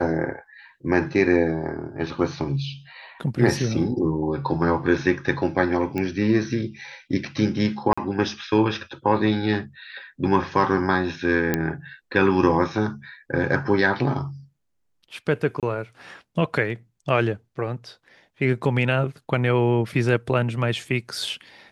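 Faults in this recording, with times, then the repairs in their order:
5.98 s: pop -15 dBFS
7.93–7.97 s: dropout 45 ms
11.54 s: pop -7 dBFS
15.60–15.63 s: dropout 27 ms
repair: de-click; interpolate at 7.93 s, 45 ms; interpolate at 15.60 s, 27 ms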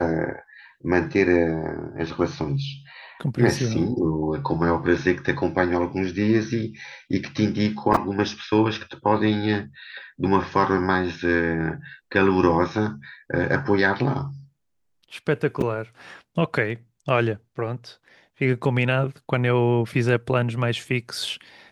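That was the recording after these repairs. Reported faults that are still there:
nothing left

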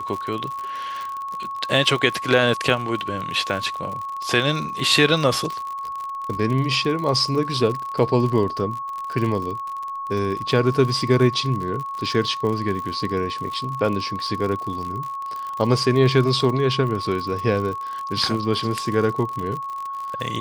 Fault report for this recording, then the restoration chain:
crackle 58 per s -27 dBFS
whine 1.1 kHz -27 dBFS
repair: de-click; band-stop 1.1 kHz, Q 30

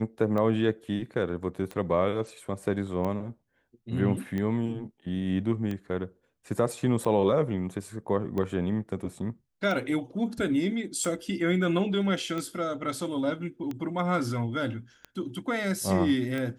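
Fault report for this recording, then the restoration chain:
tick 45 rpm -21 dBFS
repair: de-click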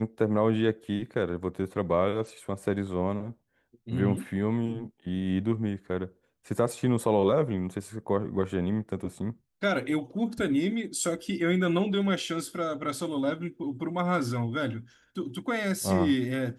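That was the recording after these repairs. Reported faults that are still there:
nothing left

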